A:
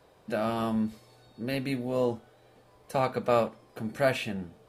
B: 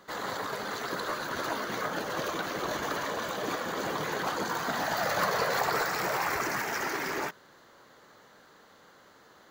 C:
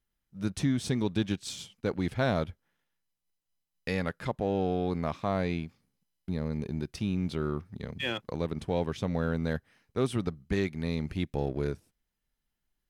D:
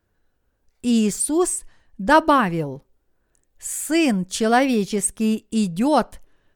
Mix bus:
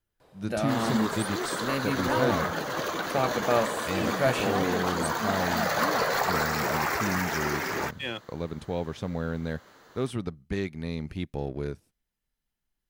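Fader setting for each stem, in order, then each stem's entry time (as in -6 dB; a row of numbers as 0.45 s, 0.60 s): 0.0 dB, +2.0 dB, -1.5 dB, -16.5 dB; 0.20 s, 0.60 s, 0.00 s, 0.00 s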